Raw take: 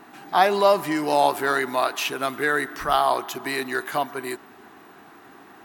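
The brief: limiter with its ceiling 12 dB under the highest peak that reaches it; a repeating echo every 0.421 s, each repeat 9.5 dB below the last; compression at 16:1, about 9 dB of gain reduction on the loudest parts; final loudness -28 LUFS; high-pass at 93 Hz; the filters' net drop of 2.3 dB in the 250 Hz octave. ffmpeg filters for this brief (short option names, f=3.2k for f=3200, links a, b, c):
-af "highpass=93,equalizer=f=250:t=o:g=-3,acompressor=threshold=-21dB:ratio=16,alimiter=limit=-21.5dB:level=0:latency=1,aecho=1:1:421|842|1263|1684:0.335|0.111|0.0365|0.012,volume=4dB"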